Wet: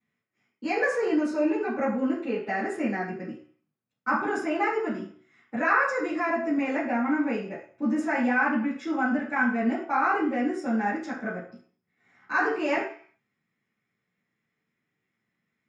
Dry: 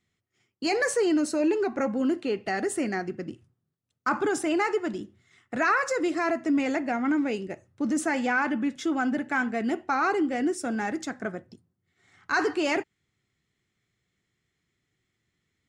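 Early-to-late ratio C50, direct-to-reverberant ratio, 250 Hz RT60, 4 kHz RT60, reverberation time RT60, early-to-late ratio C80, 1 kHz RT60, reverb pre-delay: 5.5 dB, −13.0 dB, 0.40 s, 0.55 s, 0.45 s, 9.5 dB, 0.50 s, 3 ms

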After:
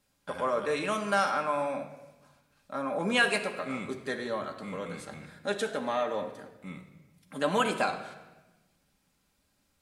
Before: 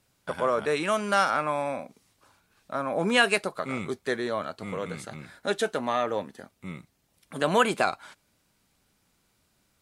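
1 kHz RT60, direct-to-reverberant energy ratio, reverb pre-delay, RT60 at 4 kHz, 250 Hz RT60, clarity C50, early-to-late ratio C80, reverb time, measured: 1.0 s, 2.0 dB, 4 ms, 0.90 s, 1.5 s, 9.0 dB, 11.0 dB, 1.1 s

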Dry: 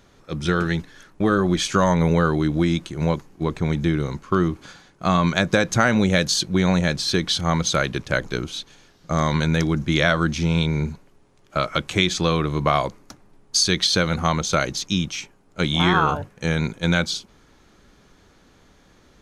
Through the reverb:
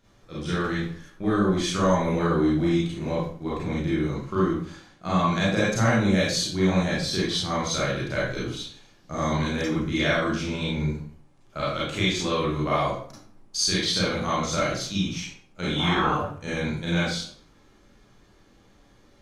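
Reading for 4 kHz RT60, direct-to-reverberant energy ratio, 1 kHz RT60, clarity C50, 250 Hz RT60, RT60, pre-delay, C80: 0.40 s, −8.0 dB, 0.50 s, −0.5 dB, 0.60 s, 0.50 s, 30 ms, 5.0 dB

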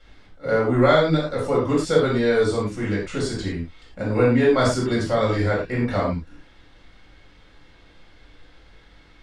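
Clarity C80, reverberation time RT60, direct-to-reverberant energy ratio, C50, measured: 8.0 dB, non-exponential decay, −6.5 dB, 3.5 dB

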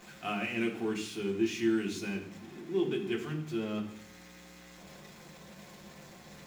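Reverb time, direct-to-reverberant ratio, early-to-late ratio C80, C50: 0.65 s, −1.5 dB, 12.5 dB, 9.5 dB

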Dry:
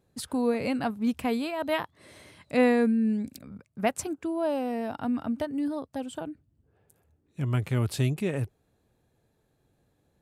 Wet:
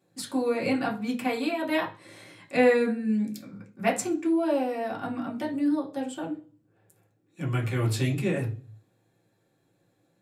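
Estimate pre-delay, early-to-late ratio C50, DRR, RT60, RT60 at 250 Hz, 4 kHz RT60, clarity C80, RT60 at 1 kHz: 3 ms, 12.0 dB, −3.5 dB, 0.40 s, 0.50 s, 0.40 s, 18.0 dB, 0.35 s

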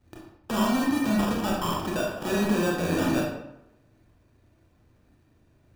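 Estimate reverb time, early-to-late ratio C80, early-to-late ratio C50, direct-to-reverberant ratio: 0.85 s, 5.0 dB, 2.0 dB, −2.5 dB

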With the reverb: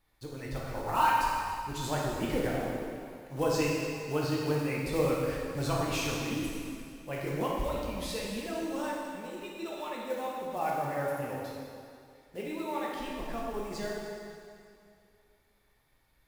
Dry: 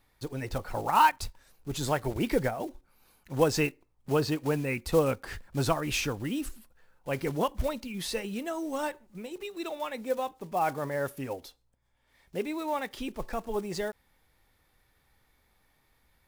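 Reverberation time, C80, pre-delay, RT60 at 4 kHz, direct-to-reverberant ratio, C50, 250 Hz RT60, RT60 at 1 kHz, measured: 2.4 s, 0.5 dB, 5 ms, 2.2 s, −4.5 dB, −1.5 dB, 2.3 s, 2.5 s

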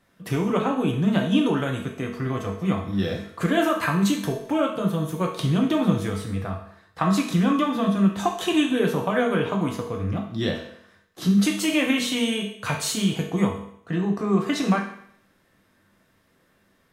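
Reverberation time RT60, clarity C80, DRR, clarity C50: 0.65 s, 10.0 dB, 0.0 dB, 6.5 dB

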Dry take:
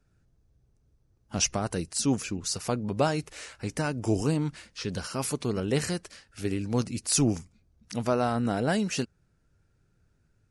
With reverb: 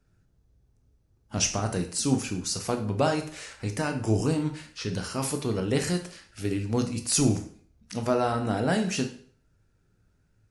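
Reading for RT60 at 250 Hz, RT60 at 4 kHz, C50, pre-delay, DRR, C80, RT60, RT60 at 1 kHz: 0.50 s, 0.45 s, 10.0 dB, 7 ms, 5.0 dB, 14.0 dB, 0.50 s, 0.50 s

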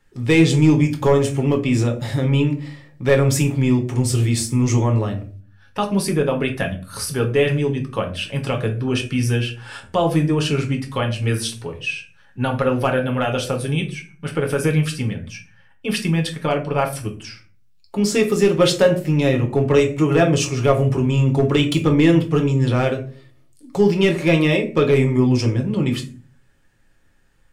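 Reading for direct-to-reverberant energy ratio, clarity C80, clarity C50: 1.5 dB, 16.5 dB, 11.5 dB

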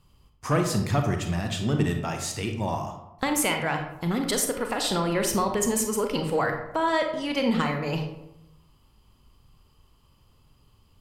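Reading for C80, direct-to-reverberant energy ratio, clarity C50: 9.0 dB, 4.0 dB, 6.0 dB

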